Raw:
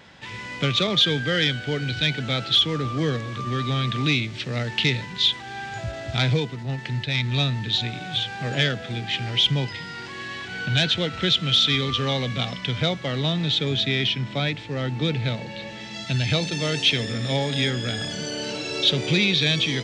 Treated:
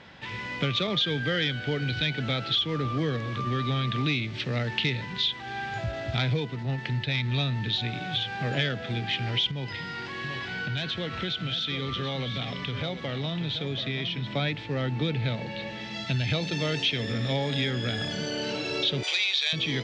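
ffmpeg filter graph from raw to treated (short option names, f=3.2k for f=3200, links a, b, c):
-filter_complex "[0:a]asettb=1/sr,asplit=3[a][b][c];[a]atrim=end=9.514[d];[b]atrim=start=9.51:end=14.27,asetpts=PTS-STARTPTS,afade=t=in:d=0.004:c=qsin,afade=t=out:st=4.756:d=0.004:c=qsin,acompressor=threshold=-30dB:ratio=2.5:attack=3.2:release=140:knee=1:detection=peak,aecho=1:1:733:0.335,atrim=end_sample=209916[e];[c]atrim=start=14.266[f];[d][e]acrossfade=d=0.004:c1=hsin:c2=qsin[g];[g][f]acrossfade=d=0.004:c1=qsin:c2=hsin,asettb=1/sr,asplit=3[h][i][j];[h]atrim=end=19.034[k];[i]atrim=start=19.03:end=19.53,asetpts=PTS-STARTPTS,afade=t=in:d=0.004:c=qsin,afade=t=out:st=0.496:d=0.004:c=qsin,highpass=f=660:w=0.5412,highpass=f=660:w=1.3066,aemphasis=mode=production:type=75fm[l];[j]atrim=start=19.526[m];[k][l]acrossfade=d=0.004:c1=hsin:c2=qsin[n];[n][m]acrossfade=d=0.004:c1=qsin:c2=hsin,acompressor=threshold=-25dB:ratio=2.5,lowpass=4.6k"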